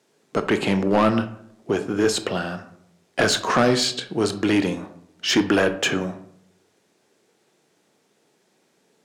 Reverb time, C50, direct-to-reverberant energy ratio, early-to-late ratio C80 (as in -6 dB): 0.70 s, 12.5 dB, 9.5 dB, 16.0 dB